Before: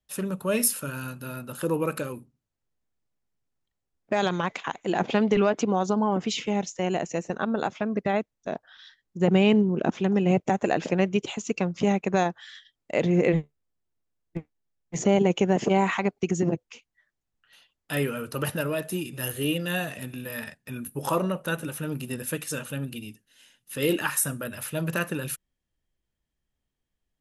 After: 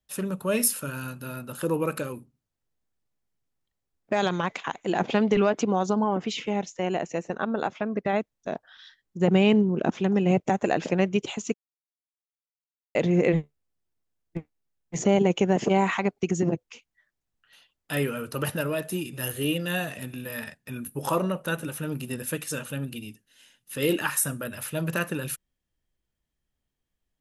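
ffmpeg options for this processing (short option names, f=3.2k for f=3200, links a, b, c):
-filter_complex "[0:a]asettb=1/sr,asplit=3[a][b][c];[a]atrim=end=6.044[d];[b]atrim=start=6.04:end=8.13,asetpts=PTS-STARTPTS,afade=t=in:d=0.004:c=qsin,afade=t=out:st=2.086:d=0.004:c=qsin,bass=f=250:g=-3,treble=f=4k:g=-6[e];[c]atrim=start=8.126[f];[d][e]acrossfade=d=0.004:c1=hsin:c2=qsin[g];[g][f]acrossfade=d=0.004:c1=qsin:c2=hsin,asplit=3[h][i][j];[h]atrim=end=11.54,asetpts=PTS-STARTPTS,afade=t=out:st=11.536:d=0.004:c=hsin[k];[i]atrim=start=11.54:end=12.95,asetpts=PTS-STARTPTS,volume=0[l];[j]atrim=start=12.95,asetpts=PTS-STARTPTS,afade=t=in:d=0.004:c=hsin[m];[k][l][m]concat=n=3:v=0:a=1"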